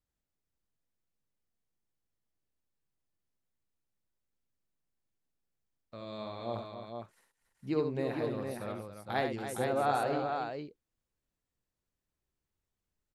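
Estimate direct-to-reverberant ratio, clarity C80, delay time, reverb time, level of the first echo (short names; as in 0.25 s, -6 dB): none, none, 70 ms, none, -6.5 dB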